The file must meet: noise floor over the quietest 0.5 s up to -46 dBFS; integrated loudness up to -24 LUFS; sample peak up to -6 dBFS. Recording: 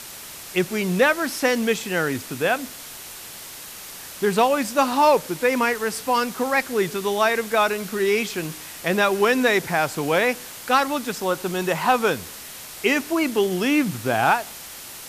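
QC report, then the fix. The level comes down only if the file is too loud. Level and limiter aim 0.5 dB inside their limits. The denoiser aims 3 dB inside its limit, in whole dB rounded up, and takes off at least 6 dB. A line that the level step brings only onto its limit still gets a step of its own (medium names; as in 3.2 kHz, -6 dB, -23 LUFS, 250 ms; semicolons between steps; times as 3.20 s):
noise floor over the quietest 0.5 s -38 dBFS: fail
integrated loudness -21.5 LUFS: fail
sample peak -6.5 dBFS: pass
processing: noise reduction 8 dB, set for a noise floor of -38 dBFS; trim -3 dB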